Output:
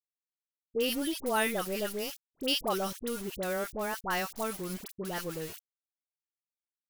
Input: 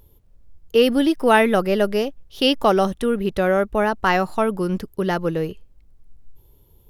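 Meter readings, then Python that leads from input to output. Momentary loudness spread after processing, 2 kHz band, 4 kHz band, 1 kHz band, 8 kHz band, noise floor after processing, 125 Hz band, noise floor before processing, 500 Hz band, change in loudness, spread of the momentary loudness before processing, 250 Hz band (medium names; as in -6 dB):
10 LU, -11.5 dB, -8.0 dB, -14.0 dB, +1.5 dB, under -85 dBFS, -15.5 dB, -54 dBFS, -15.0 dB, -13.0 dB, 9 LU, -15.5 dB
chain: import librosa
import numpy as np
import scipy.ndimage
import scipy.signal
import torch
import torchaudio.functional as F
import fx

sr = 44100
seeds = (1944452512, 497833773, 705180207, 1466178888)

y = np.where(np.abs(x) >= 10.0 ** (-30.0 / 20.0), x, 0.0)
y = librosa.effects.preemphasis(y, coef=0.8, zi=[0.0])
y = fx.dispersion(y, sr, late='highs', ms=66.0, hz=1200.0)
y = y * 10.0 ** (-1.5 / 20.0)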